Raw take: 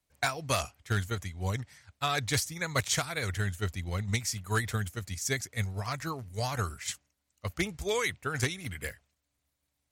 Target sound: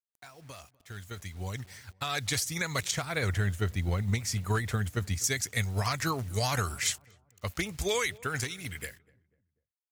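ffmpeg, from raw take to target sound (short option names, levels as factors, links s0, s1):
-filter_complex "[0:a]asettb=1/sr,asplit=3[s0][s1][s2];[s0]atrim=end=2.914[s3];[s1]atrim=start=2.91:end=5.24,asetpts=PTS-STARTPTS,afade=t=in:d=0.004:c=qsin,afade=t=out:st=2.326:d=0.004:c=qsin,highshelf=f=2100:g=-11.5[s4];[s2]atrim=start=5.236[s5];[s3][s4]acrossfade=d=0.004:c1=hsin:c2=qsin[s6];[s6][s5]acrossfade=d=0.004:c1=qsin:c2=hsin,acompressor=threshold=0.02:ratio=2,alimiter=level_in=2:limit=0.0631:level=0:latency=1:release=404,volume=0.501,dynaudnorm=f=310:g=11:m=6.31,acrusher=bits=8:mix=0:aa=0.000001,asplit=2[s7][s8];[s8]adelay=246,lowpass=f=1100:p=1,volume=0.075,asplit=2[s9][s10];[s10]adelay=246,lowpass=f=1100:p=1,volume=0.45,asplit=2[s11][s12];[s12]adelay=246,lowpass=f=1100:p=1,volume=0.45[s13];[s7][s9][s11][s13]amix=inputs=4:normalize=0,adynamicequalizer=threshold=0.00891:dfrequency=1600:dqfactor=0.7:tfrequency=1600:tqfactor=0.7:attack=5:release=100:ratio=0.375:range=2:mode=boostabove:tftype=highshelf,volume=0.501"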